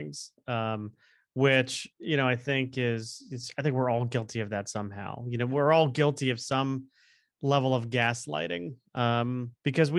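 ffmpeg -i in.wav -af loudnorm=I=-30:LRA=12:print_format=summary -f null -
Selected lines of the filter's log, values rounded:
Input Integrated:    -28.8 LUFS
Input True Peak:      -8.8 dBTP
Input LRA:             1.6 LU
Input Threshold:     -39.1 LUFS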